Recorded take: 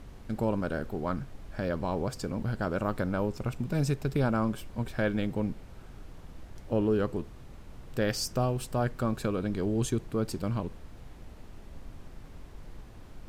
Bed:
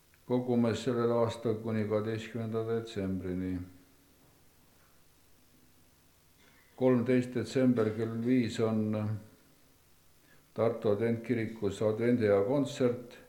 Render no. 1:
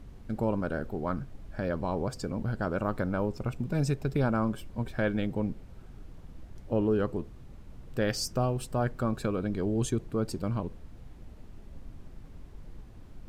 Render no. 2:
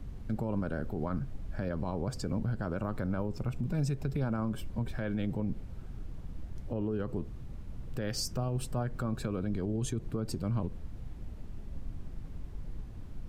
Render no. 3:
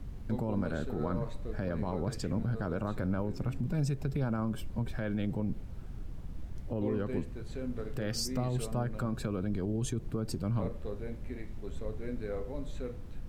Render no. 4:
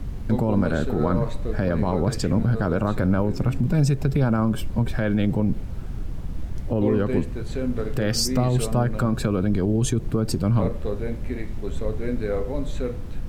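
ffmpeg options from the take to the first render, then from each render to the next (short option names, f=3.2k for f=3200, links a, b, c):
-af "afftdn=nr=6:nf=-48"
-filter_complex "[0:a]acrossover=split=220|840|5700[a][b][c][d];[a]acontrast=36[e];[e][b][c][d]amix=inputs=4:normalize=0,alimiter=limit=-24dB:level=0:latency=1:release=89"
-filter_complex "[1:a]volume=-12dB[a];[0:a][a]amix=inputs=2:normalize=0"
-af "volume=11.5dB"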